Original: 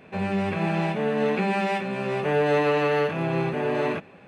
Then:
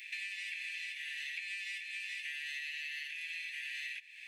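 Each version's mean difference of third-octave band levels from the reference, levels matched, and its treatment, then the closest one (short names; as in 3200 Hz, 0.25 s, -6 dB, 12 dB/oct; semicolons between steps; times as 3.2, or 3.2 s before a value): 25.0 dB: steep high-pass 1800 Hz 96 dB/oct; high shelf 2700 Hz +7 dB; compressor 12:1, threshold -46 dBFS, peak gain reduction 19 dB; gain +7 dB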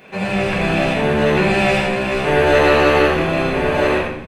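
5.0 dB: tilt +2 dB/oct; on a send: frequency-shifting echo 83 ms, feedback 36%, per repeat -67 Hz, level -4.5 dB; on the sum: shoebox room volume 140 m³, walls mixed, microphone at 0.96 m; gain +5 dB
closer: second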